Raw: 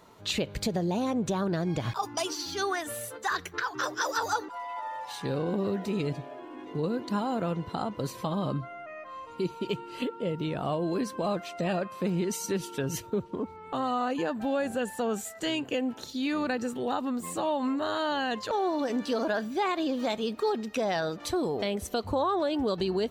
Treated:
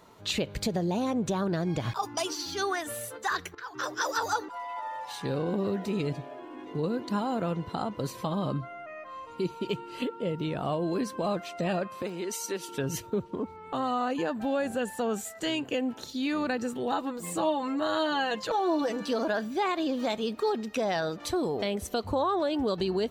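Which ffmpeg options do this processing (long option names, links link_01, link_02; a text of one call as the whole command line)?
ffmpeg -i in.wav -filter_complex "[0:a]asettb=1/sr,asplit=3[link_01][link_02][link_03];[link_01]atrim=end=12.024[link_04];[link_02]atrim=start=12.02:end=12.69,asetpts=PTS-STARTPTS,afade=type=in:duration=0.004:curve=qsin,afade=type=out:start_time=0.666:duration=0.004:curve=qsin,highpass=380[link_05];[link_03]atrim=start=12.686[link_06];[link_04][link_05]acrossfade=duration=0.004:curve1=hsin:curve2=qsin[link_07];[link_07][link_06]acrossfade=duration=0.004:curve1=qsin:curve2=hsin,asettb=1/sr,asplit=3[link_08][link_09][link_10];[link_08]atrim=end=16.914[link_11];[link_09]atrim=start=16.91:end=19.08,asetpts=PTS-STARTPTS,afade=type=in:duration=0.004:curve=qsin,afade=type=out:start_time=2.166:duration=0.004:curve=qsin,aecho=1:1:6.1:0.65,atrim=end_sample=95697[link_12];[link_10]atrim=start=19.076[link_13];[link_11][link_12]acrossfade=duration=0.004:curve1=hsin:curve2=qsin[link_14];[link_14][link_13]acrossfade=duration=0.004:curve1=qsin:curve2=hsin,asplit=2[link_15][link_16];[link_15]atrim=end=3.55,asetpts=PTS-STARTPTS,afade=type=out:start_time=3.546:duration=0.004:curve=hsin:silence=0.112202[link_17];[link_16]atrim=start=3.55,asetpts=PTS-STARTPTS,afade=type=in:duration=0.54:curve=qsin:silence=0.112202[link_18];[link_17][link_18]concat=n=2:v=0:a=1" out.wav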